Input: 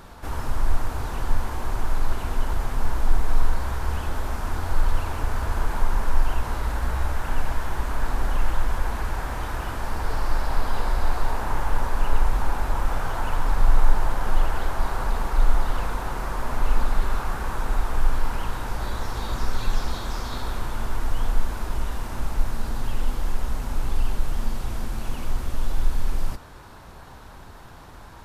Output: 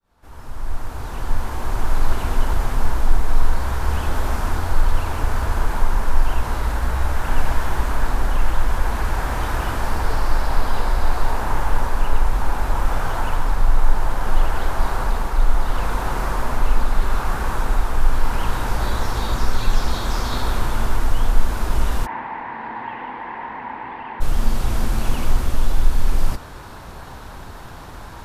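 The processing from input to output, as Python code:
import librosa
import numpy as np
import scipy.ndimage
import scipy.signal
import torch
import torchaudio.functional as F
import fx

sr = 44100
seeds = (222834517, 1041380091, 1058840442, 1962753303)

y = fx.fade_in_head(x, sr, length_s=3.13)
y = fx.rider(y, sr, range_db=4, speed_s=0.5)
y = fx.cabinet(y, sr, low_hz=350.0, low_slope=12, high_hz=2300.0, hz=(400.0, 590.0, 930.0, 1300.0, 1900.0), db=(-5, -8, 10, -9, 8), at=(22.05, 24.2), fade=0.02)
y = y * 10.0 ** (5.0 / 20.0)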